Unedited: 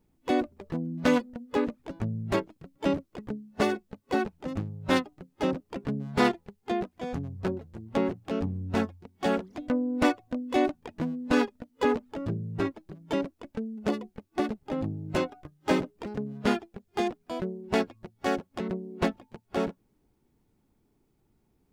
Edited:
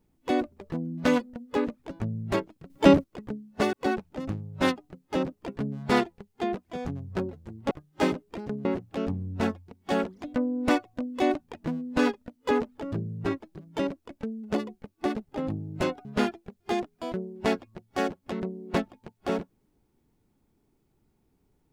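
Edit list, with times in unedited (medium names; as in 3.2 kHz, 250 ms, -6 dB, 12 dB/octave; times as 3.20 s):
2.70–3.04 s: gain +10 dB
3.73–4.01 s: delete
15.39–16.33 s: move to 7.99 s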